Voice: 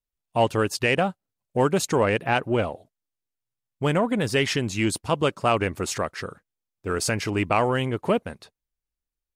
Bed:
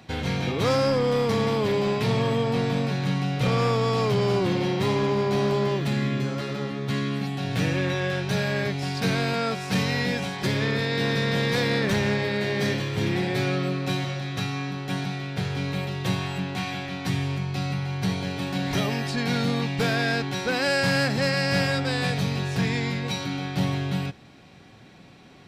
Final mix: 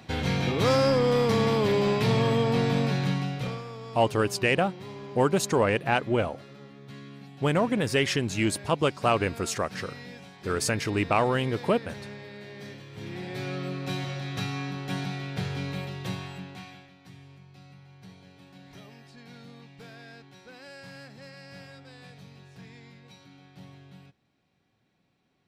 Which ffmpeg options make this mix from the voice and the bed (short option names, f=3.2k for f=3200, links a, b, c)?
-filter_complex "[0:a]adelay=3600,volume=-2dB[a];[1:a]volume=14.5dB,afade=t=out:st=2.97:d=0.66:silence=0.133352,afade=t=in:st=12.87:d=1.45:silence=0.188365,afade=t=out:st=15.39:d=1.55:silence=0.1[b];[a][b]amix=inputs=2:normalize=0"